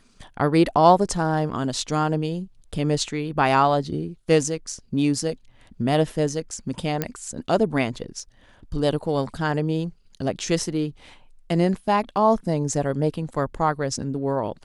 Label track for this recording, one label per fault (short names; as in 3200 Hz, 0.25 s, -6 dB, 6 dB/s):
7.020000	7.020000	pop -9 dBFS